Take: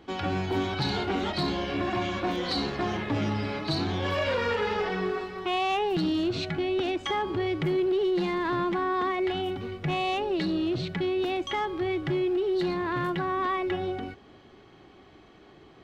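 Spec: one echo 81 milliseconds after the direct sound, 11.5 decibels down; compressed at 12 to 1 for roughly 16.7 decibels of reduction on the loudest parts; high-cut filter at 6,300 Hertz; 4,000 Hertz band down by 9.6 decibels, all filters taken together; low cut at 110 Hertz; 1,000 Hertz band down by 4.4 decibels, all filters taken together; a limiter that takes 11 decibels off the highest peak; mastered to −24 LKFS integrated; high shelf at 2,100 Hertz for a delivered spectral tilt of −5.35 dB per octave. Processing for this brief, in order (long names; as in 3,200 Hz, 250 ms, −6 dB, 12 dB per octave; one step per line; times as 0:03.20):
high-pass filter 110 Hz
low-pass filter 6,300 Hz
parametric band 1,000 Hz −4.5 dB
high-shelf EQ 2,100 Hz −6 dB
parametric band 4,000 Hz −6 dB
downward compressor 12 to 1, threshold −42 dBFS
brickwall limiter −43.5 dBFS
single-tap delay 81 ms −11.5 dB
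level +26.5 dB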